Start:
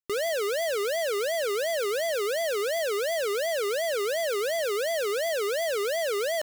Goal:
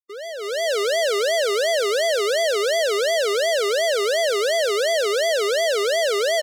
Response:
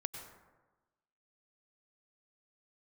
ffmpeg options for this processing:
-filter_complex "[0:a]asplit=2[link_01][link_02];[link_02]adelay=149,lowpass=frequency=1000:poles=1,volume=-16.5dB,asplit=2[link_03][link_04];[link_04]adelay=149,lowpass=frequency=1000:poles=1,volume=0.41,asplit=2[link_05][link_06];[link_06]adelay=149,lowpass=frequency=1000:poles=1,volume=0.41,asplit=2[link_07][link_08];[link_08]adelay=149,lowpass=frequency=1000:poles=1,volume=0.41[link_09];[link_01][link_03][link_05][link_07][link_09]amix=inputs=5:normalize=0,dynaudnorm=framelen=360:gausssize=3:maxgain=14dB,aemphasis=mode=production:type=75fm,bandreject=frequency=2500:width=5.1,afftdn=noise_reduction=18:noise_floor=-28,highpass=340,lowpass=4100,equalizer=frequency=1400:width=1.5:gain=-2.5,volume=-5.5dB"

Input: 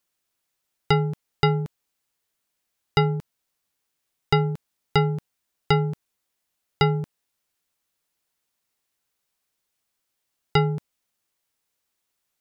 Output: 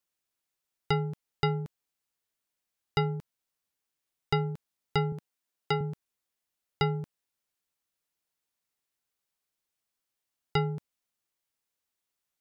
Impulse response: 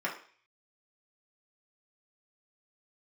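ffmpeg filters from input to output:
-filter_complex "[0:a]asettb=1/sr,asplit=3[link_01][link_02][link_03];[link_01]atrim=end=5.124[link_04];[link_02]atrim=start=5.12:end=5.81,asetpts=PTS-STARTPTS,afade=type=in:duration=0.004:curve=qsin,afade=type=out:start_time=0.686:duration=0.004:curve=qsin,highpass=160[link_05];[link_03]atrim=start=5.806[link_06];[link_04][link_05]acrossfade=duration=0.004:curve1=hsin:curve2=qsin[link_07];[link_07][link_06]acrossfade=duration=0.004:curve1=qsin:curve2=hsin,volume=-7.5dB"

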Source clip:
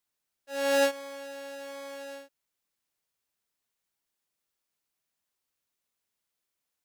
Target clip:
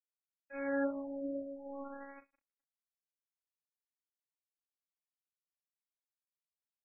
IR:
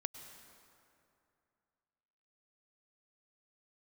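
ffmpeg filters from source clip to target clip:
-filter_complex "[0:a]highpass=160[link_01];[1:a]atrim=start_sample=2205[link_02];[link_01][link_02]afir=irnorm=-1:irlink=0,afftdn=noise_reduction=24:noise_floor=-47,equalizer=frequency=250:width_type=o:width=1:gain=5,equalizer=frequency=500:width_type=o:width=1:gain=-7,equalizer=frequency=1000:width_type=o:width=1:gain=-6,equalizer=frequency=2000:width_type=o:width=1:gain=-10,equalizer=frequency=4000:width_type=o:width=1:gain=-4,equalizer=frequency=8000:width_type=o:width=1:gain=4,aecho=1:1:537:0.422,acrossover=split=610|1300|7000[link_03][link_04][link_05][link_06];[link_04]acompressor=threshold=-54dB:ratio=8[link_07];[link_03][link_07][link_05][link_06]amix=inputs=4:normalize=0,aemphasis=mode=production:type=riaa,flanger=delay=7:depth=5.3:regen=-89:speed=0.67:shape=triangular,acrusher=bits=7:mix=0:aa=0.5,afftfilt=real='re*lt(b*sr/1024,730*pow(2700/730,0.5+0.5*sin(2*PI*0.53*pts/sr)))':imag='im*lt(b*sr/1024,730*pow(2700/730,0.5+0.5*sin(2*PI*0.53*pts/sr)))':win_size=1024:overlap=0.75,volume=8.5dB"

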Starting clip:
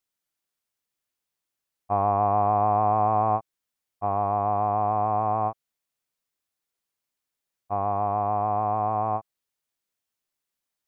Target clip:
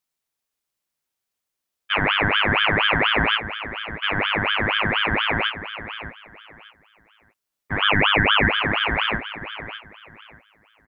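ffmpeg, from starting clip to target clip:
ffmpeg -i in.wav -filter_complex "[0:a]asettb=1/sr,asplit=3[link_01][link_02][link_03];[link_01]atrim=end=7.824[link_04];[link_02]atrim=start=7.82:end=8.49,asetpts=PTS-STARTPTS,afade=type=in:duration=0.004:curve=qsin,afade=type=out:start_time=0.666:duration=0.004:curve=qsin,equalizer=frequency=250:width_type=o:width=1:gain=-10,equalizer=frequency=1000:width_type=o:width=1:gain=11,equalizer=frequency=2000:width_type=o:width=1:gain=-5[link_05];[link_03]atrim=start=8.486[link_06];[link_04][link_05]acrossfade=duration=0.004:curve1=hsin:curve2=qsin[link_07];[link_07][link_06]acrossfade=duration=0.004:curve1=qsin:curve2=hsin,aecho=1:1:604|1208|1812:0.266|0.0665|0.0166,aeval=exprs='val(0)*sin(2*PI*1600*n/s+1600*0.5/4.2*sin(2*PI*4.2*n/s))':channel_layout=same,volume=5dB" out.wav

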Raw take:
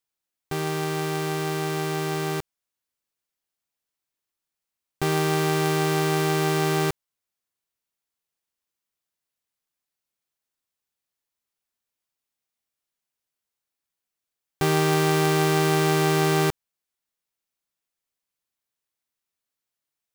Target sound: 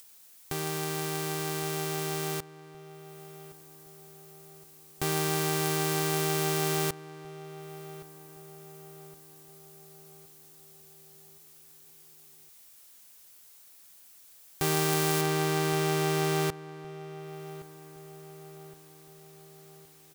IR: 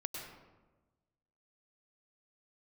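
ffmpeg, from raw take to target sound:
-filter_complex "[0:a]asetnsamples=nb_out_samples=441:pad=0,asendcmd='15.21 highshelf g 3',highshelf=frequency=5400:gain=11.5,acompressor=mode=upward:threshold=-24dB:ratio=2.5,asplit=2[link_01][link_02];[link_02]adelay=1117,lowpass=frequency=1900:poles=1,volume=-15dB,asplit=2[link_03][link_04];[link_04]adelay=1117,lowpass=frequency=1900:poles=1,volume=0.52,asplit=2[link_05][link_06];[link_06]adelay=1117,lowpass=frequency=1900:poles=1,volume=0.52,asplit=2[link_07][link_08];[link_08]adelay=1117,lowpass=frequency=1900:poles=1,volume=0.52,asplit=2[link_09][link_10];[link_10]adelay=1117,lowpass=frequency=1900:poles=1,volume=0.52[link_11];[link_01][link_03][link_05][link_07][link_09][link_11]amix=inputs=6:normalize=0,volume=-7dB"

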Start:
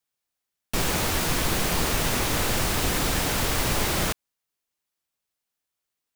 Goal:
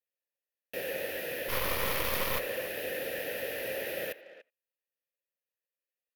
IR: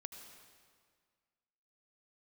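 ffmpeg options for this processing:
-filter_complex "[0:a]asplit=3[link_01][link_02][link_03];[link_01]bandpass=frequency=530:width_type=q:width=8,volume=0dB[link_04];[link_02]bandpass=frequency=1840:width_type=q:width=8,volume=-6dB[link_05];[link_03]bandpass=frequency=2480:width_type=q:width=8,volume=-9dB[link_06];[link_04][link_05][link_06]amix=inputs=3:normalize=0,asplit=3[link_07][link_08][link_09];[link_07]afade=type=out:start_time=1.48:duration=0.02[link_10];[link_08]aeval=exprs='0.0501*(cos(1*acos(clip(val(0)/0.0501,-1,1)))-cos(1*PI/2))+0.02*(cos(6*acos(clip(val(0)/0.0501,-1,1)))-cos(6*PI/2))':channel_layout=same,afade=type=in:start_time=1.48:duration=0.02,afade=type=out:start_time=2.38:duration=0.02[link_11];[link_09]afade=type=in:start_time=2.38:duration=0.02[link_12];[link_10][link_11][link_12]amix=inputs=3:normalize=0,aexciter=amount=15.5:drive=7:freq=11000,asplit=2[link_13][link_14];[link_14]adelay=290,highpass=300,lowpass=3400,asoftclip=type=hard:threshold=-32dB,volume=-15dB[link_15];[link_13][link_15]amix=inputs=2:normalize=0,asplit=2[link_16][link_17];[1:a]atrim=start_sample=2205,atrim=end_sample=3969[link_18];[link_17][link_18]afir=irnorm=-1:irlink=0,volume=-3.5dB[link_19];[link_16][link_19]amix=inputs=2:normalize=0"

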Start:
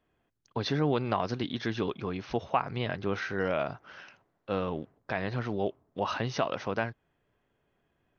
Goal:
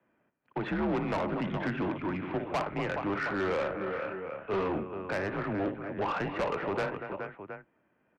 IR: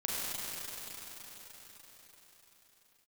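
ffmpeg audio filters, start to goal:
-filter_complex "[0:a]aecho=1:1:58|237|421|719:0.211|0.2|0.266|0.168,acrossover=split=190|800[link_01][link_02][link_03];[link_01]acrusher=samples=12:mix=1:aa=0.000001:lfo=1:lforange=12:lforate=1.3[link_04];[link_04][link_02][link_03]amix=inputs=3:normalize=0,highpass=frequency=240:width_type=q:width=0.5412,highpass=frequency=240:width_type=q:width=1.307,lowpass=frequency=2600:width_type=q:width=0.5176,lowpass=frequency=2600:width_type=q:width=0.7071,lowpass=frequency=2600:width_type=q:width=1.932,afreqshift=-94,asettb=1/sr,asplit=3[link_05][link_06][link_07];[link_05]atrim=end=3.774[link_08];[link_06]atrim=start=3.77:end=4.8,asetpts=PTS-STARTPTS,afade=type=in:duration=0.004:curve=qsin,afade=type=out:start_time=1.026:duration=0.004:curve=qsin,asplit=2[link_09][link_10];[link_10]adelay=26,volume=-2dB[link_11];[link_09][link_11]amix=inputs=2:normalize=0,atrim=end_sample=45423[link_12];[link_07]atrim=start=4.796[link_13];[link_08][link_12]acrossfade=duration=0.004:curve1=hsin:curve2=qsin[link_14];[link_14][link_13]acrossfade=duration=0.004:curve1=qsin:curve2=hsin,asoftclip=type=tanh:threshold=-30.5dB,volume=4.5dB"

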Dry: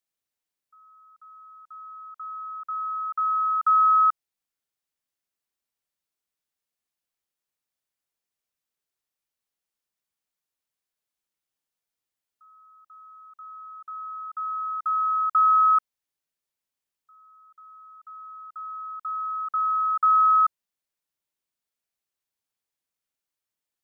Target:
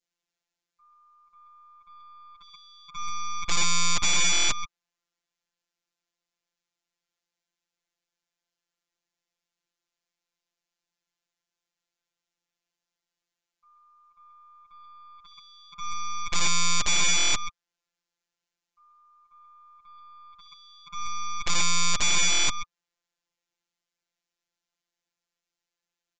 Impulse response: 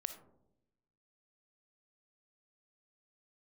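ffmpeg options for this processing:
-af "bandreject=frequency=1300:width=18,aecho=1:1:119:0.376,alimiter=level_in=0.5dB:limit=-24dB:level=0:latency=1:release=388,volume=-0.5dB,aeval=exprs='0.0596*(cos(1*acos(clip(val(0)/0.0596,-1,1)))-cos(1*PI/2))+0.0133*(cos(8*acos(clip(val(0)/0.0596,-1,1)))-cos(8*PI/2))':channel_layout=same,adynamicequalizer=threshold=0.0112:dfrequency=1300:dqfactor=1.2:tfrequency=1300:tqfactor=1.2:attack=5:release=100:ratio=0.375:range=2.5:mode=boostabove:tftype=bell,asetrate=40131,aresample=44100,aeval=exprs='0.133*(cos(1*acos(clip(val(0)/0.133,-1,1)))-cos(1*PI/2))+0.0596*(cos(2*acos(clip(val(0)/0.133,-1,1)))-cos(2*PI/2))+0.00335*(cos(3*acos(clip(val(0)/0.133,-1,1)))-cos(3*PI/2))+0.0119*(cos(5*acos(clip(val(0)/0.133,-1,1)))-cos(5*PI/2))+0.0596*(cos(6*acos(clip(val(0)/0.133,-1,1)))-cos(6*PI/2))':channel_layout=same,afftfilt=real='hypot(re,im)*cos(PI*b)':imag='0':win_size=1024:overlap=0.75,aeval=exprs='(mod(5.96*val(0)+1,2)-1)/5.96':channel_layout=same,aresample=16000,aresample=44100,volume=3dB"

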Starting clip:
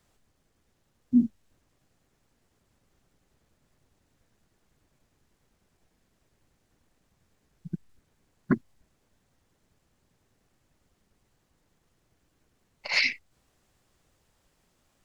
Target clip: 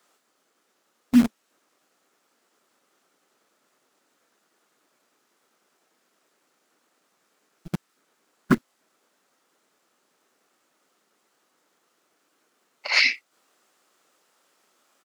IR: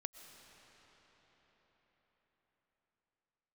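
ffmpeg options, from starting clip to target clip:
-filter_complex "[0:a]equalizer=frequency=1300:width=3.7:gain=7,acrossover=split=260|930|2100[link_01][link_02][link_03][link_04];[link_01]acrusher=bits=6:dc=4:mix=0:aa=0.000001[link_05];[link_04]asplit=2[link_06][link_07];[link_07]adelay=26,volume=-4dB[link_08];[link_06][link_08]amix=inputs=2:normalize=0[link_09];[link_05][link_02][link_03][link_09]amix=inputs=4:normalize=0,volume=4.5dB"

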